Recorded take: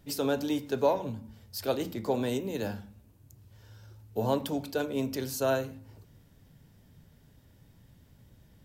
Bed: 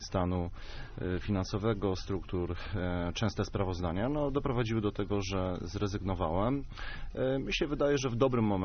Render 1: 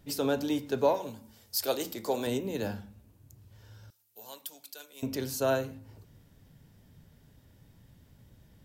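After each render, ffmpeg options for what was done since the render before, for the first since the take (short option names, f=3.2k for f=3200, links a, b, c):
-filter_complex "[0:a]asettb=1/sr,asplit=3[a][b][c];[a]atrim=end=0.944[d];[b]atrim=start=0.94:end=2.27,asetpts=PTS-STARTPTS,afade=t=in:d=0.004:c=qsin,afade=t=out:st=1.326:d=0.004:c=qsin,bass=f=250:g=-11,treble=f=4k:g=9[e];[c]atrim=start=2.266[f];[d][e]acrossfade=d=0.004:c1=hsin:c2=qsin[g];[g][f]acrossfade=d=0.004:c1=qsin:c2=hsin,asettb=1/sr,asplit=3[h][i][j];[h]atrim=end=3.904[k];[i]atrim=start=3.9:end=5.03,asetpts=PTS-STARTPTS,afade=t=in:d=0.004:c=qsin,afade=t=out:st=1.126:d=0.004:c=qsin,aderivative[l];[j]atrim=start=5.026[m];[k][l]acrossfade=d=0.004:c1=hsin:c2=qsin[n];[n][m]acrossfade=d=0.004:c1=qsin:c2=hsin"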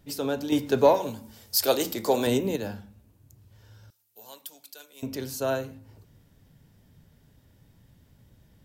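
-filter_complex "[0:a]asettb=1/sr,asplit=3[a][b][c];[a]atrim=end=0.524[d];[b]atrim=start=0.52:end=2.56,asetpts=PTS-STARTPTS,afade=t=in:d=0.004:c=qsin,afade=t=out:st=2.036:d=0.004:c=qsin,acontrast=85[e];[c]atrim=start=2.556[f];[d][e]acrossfade=d=0.004:c1=hsin:c2=qsin[g];[g][f]acrossfade=d=0.004:c1=qsin:c2=hsin"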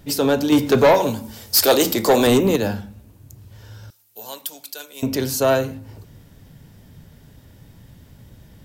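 -af "apsyclip=12dB,asoftclip=type=tanh:threshold=-8.5dB"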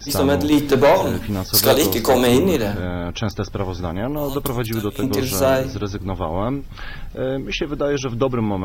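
-filter_complex "[1:a]volume=8dB[a];[0:a][a]amix=inputs=2:normalize=0"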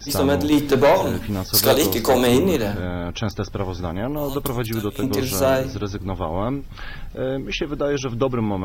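-af "volume=-1.5dB"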